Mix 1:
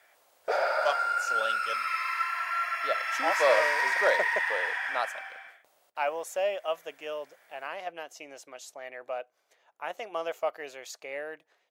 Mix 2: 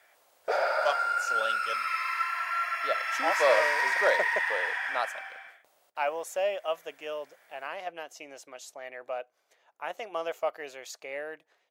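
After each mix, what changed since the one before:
nothing changed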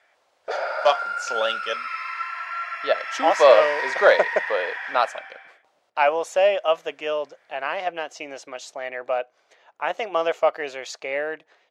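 speech +10.5 dB
master: add low-pass filter 5,400 Hz 12 dB per octave

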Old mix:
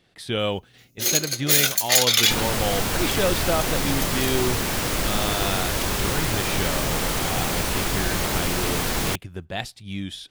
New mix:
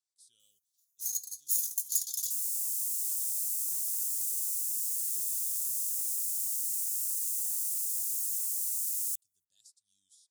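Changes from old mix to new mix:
speech: add high-frequency loss of the air 98 metres
first sound: add high-shelf EQ 6,300 Hz −10 dB
master: add inverse Chebyshev high-pass filter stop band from 2,400 Hz, stop band 60 dB

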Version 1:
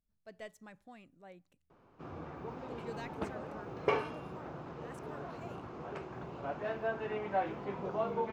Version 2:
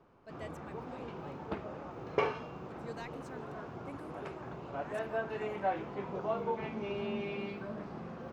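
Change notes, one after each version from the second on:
background: entry −1.70 s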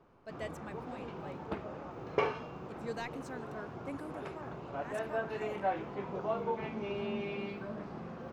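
speech +5.0 dB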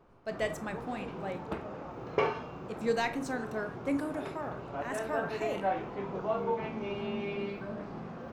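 speech +8.0 dB
reverb: on, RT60 0.45 s

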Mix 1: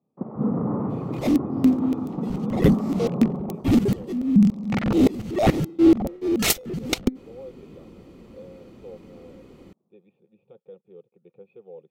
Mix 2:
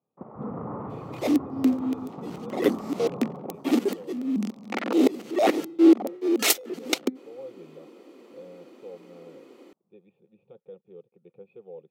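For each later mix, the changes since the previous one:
first sound: add parametric band 210 Hz −12.5 dB 2.4 octaves
second sound: add Butterworth high-pass 270 Hz 36 dB per octave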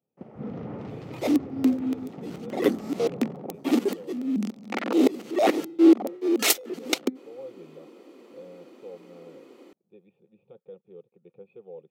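first sound: remove low-pass with resonance 1,100 Hz, resonance Q 4.6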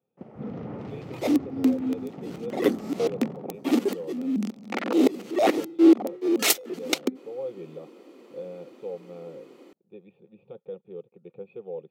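speech +7.0 dB

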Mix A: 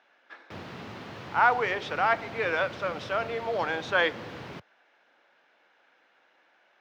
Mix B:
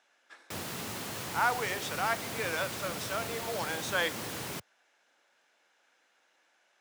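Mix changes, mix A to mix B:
speech −8.0 dB
master: remove high-frequency loss of the air 260 metres

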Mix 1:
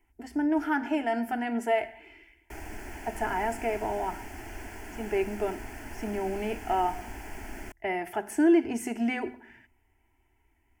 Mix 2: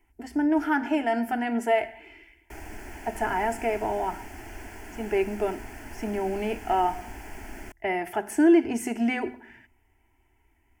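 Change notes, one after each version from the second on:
speech +3.0 dB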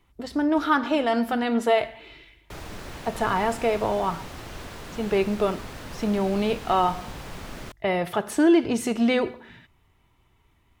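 speech: remove mains-hum notches 50/100/150/200/250 Hz
master: remove phaser with its sweep stopped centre 780 Hz, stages 8

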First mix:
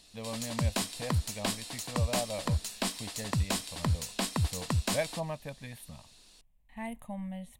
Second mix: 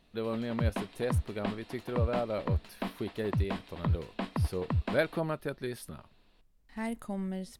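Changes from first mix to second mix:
speech: remove phaser with its sweep stopped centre 1,400 Hz, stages 6
background: add high-frequency loss of the air 480 metres

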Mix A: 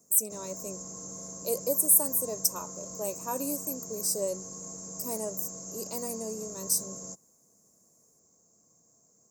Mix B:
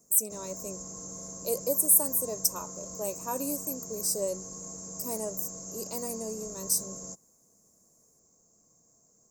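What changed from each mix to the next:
master: remove high-pass filter 78 Hz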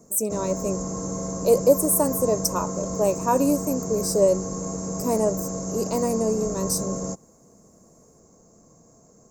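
background +3.0 dB
master: remove first-order pre-emphasis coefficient 0.8

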